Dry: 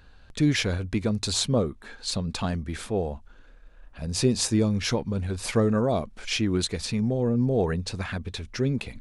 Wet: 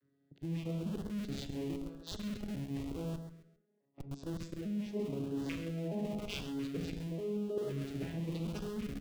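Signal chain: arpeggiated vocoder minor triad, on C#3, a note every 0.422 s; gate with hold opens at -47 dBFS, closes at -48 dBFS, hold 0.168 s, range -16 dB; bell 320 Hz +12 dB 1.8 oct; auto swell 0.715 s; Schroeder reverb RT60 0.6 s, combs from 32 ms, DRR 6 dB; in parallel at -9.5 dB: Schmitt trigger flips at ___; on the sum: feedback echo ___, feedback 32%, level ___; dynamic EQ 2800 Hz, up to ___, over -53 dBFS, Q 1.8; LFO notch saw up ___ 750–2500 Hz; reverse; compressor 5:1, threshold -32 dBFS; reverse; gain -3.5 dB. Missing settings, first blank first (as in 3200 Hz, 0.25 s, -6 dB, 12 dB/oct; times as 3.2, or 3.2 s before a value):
-38.5 dBFS, 0.134 s, -11 dB, +6 dB, 0.91 Hz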